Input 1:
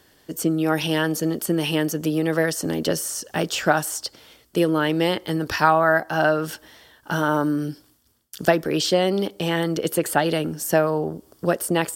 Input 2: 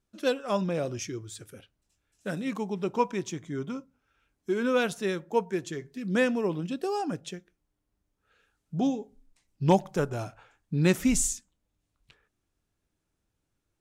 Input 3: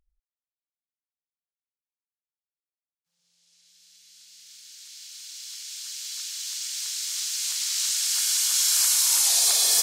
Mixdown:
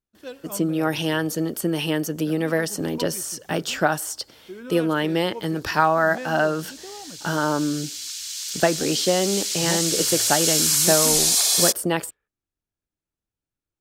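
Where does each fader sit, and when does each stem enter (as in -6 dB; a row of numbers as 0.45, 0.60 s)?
-1.5, -10.5, +1.5 dB; 0.15, 0.00, 1.90 s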